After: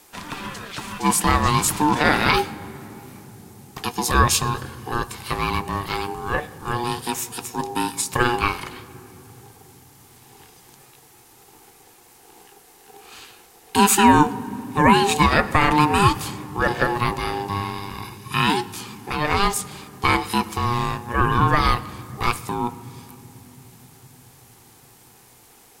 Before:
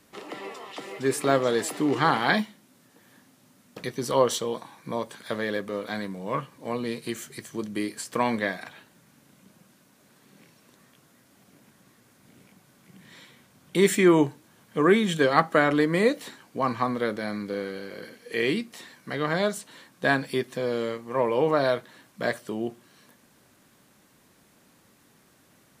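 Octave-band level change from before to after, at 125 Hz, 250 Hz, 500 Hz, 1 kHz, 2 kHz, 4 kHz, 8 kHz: +9.5 dB, +3.0 dB, -2.0 dB, +10.0 dB, +5.5 dB, +8.5 dB, +12.0 dB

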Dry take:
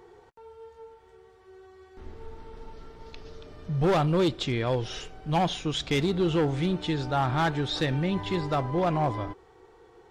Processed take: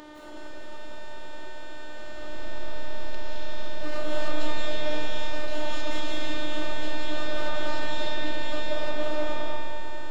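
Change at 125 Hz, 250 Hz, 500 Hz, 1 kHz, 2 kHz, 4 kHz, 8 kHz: -11.5 dB, -8.5 dB, -3.5 dB, -5.5 dB, +2.5 dB, -0.5 dB, -1.0 dB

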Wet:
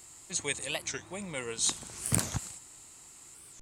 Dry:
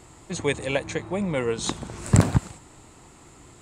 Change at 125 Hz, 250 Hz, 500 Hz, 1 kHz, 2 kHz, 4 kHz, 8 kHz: -15.0 dB, -14.5 dB, -13.5 dB, -10.5 dB, -6.0 dB, -1.0 dB, +3.5 dB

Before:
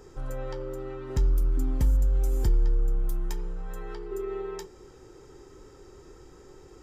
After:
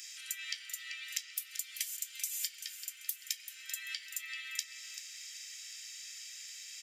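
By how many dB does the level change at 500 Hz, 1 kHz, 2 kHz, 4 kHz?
under -40 dB, -20.5 dB, +8.0 dB, +13.0 dB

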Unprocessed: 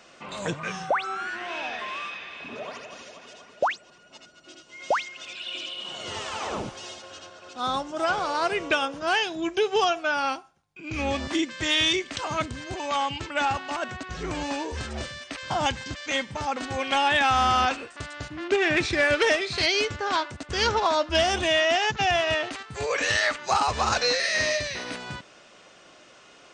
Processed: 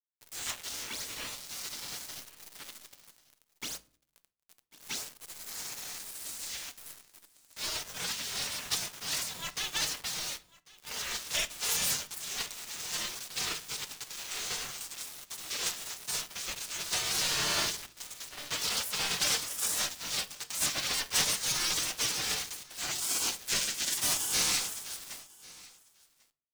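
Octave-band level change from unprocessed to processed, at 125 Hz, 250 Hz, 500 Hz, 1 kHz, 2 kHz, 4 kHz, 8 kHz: -12.5 dB, -17.0 dB, -20.5 dB, -18.0 dB, -12.0 dB, -4.0 dB, +6.5 dB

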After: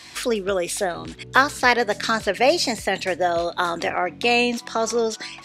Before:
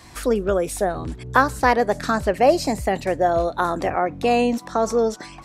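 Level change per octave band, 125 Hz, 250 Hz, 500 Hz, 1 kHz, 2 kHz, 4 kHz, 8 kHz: -7.5 dB, -3.5 dB, -2.5 dB, -2.0 dB, +4.5 dB, +8.5 dB, +4.0 dB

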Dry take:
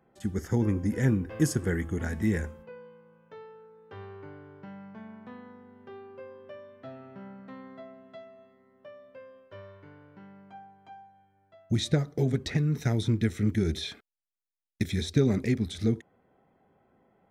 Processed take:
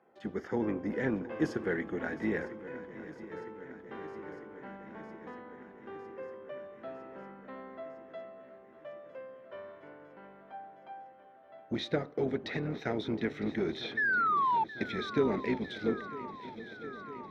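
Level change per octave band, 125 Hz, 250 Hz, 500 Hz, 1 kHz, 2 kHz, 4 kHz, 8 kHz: -15.0 dB, -5.5 dB, 0.0 dB, +12.0 dB, +5.5 dB, -5.5 dB, under -15 dB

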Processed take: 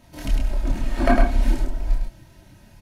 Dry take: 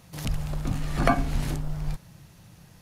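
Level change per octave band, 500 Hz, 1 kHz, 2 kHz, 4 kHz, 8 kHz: +5.0 dB, +2.0 dB, +3.5 dB, +0.5 dB, -1.5 dB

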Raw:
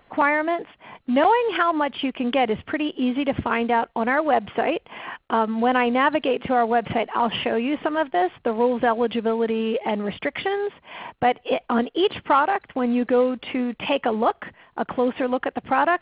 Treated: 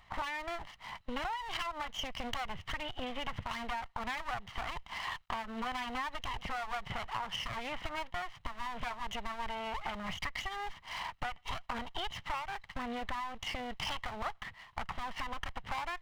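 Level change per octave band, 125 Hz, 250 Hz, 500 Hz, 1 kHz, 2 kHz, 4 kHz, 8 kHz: -9.0 dB, -23.0 dB, -24.5 dB, -15.5 dB, -12.5 dB, -7.5 dB, no reading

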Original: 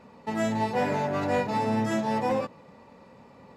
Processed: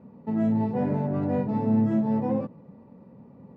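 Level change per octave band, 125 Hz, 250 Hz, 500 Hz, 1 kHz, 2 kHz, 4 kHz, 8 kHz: +5.5 dB, +6.0 dB, -2.5 dB, -7.0 dB, under -10 dB, under -15 dB, under -25 dB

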